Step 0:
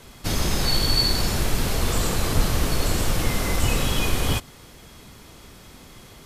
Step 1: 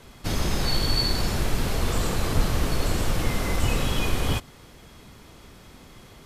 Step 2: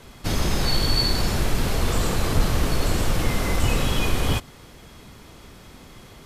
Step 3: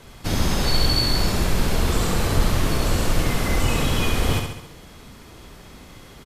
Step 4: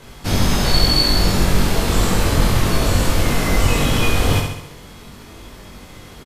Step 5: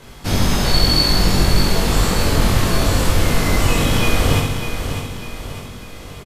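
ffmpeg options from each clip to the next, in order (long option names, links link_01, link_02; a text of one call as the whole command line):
ffmpeg -i in.wav -af "highshelf=frequency=4300:gain=-5.5,volume=-1.5dB" out.wav
ffmpeg -i in.wav -af "acontrast=42,volume=-3dB" out.wav
ffmpeg -i in.wav -af "aecho=1:1:68|136|204|272|340|408|476:0.562|0.309|0.17|0.0936|0.0515|0.0283|0.0156" out.wav
ffmpeg -i in.wav -filter_complex "[0:a]asplit=2[link_01][link_02];[link_02]adelay=21,volume=-2dB[link_03];[link_01][link_03]amix=inputs=2:normalize=0,volume=2.5dB" out.wav
ffmpeg -i in.wav -af "aecho=1:1:599|1198|1797|2396|2995:0.376|0.173|0.0795|0.0366|0.0168" out.wav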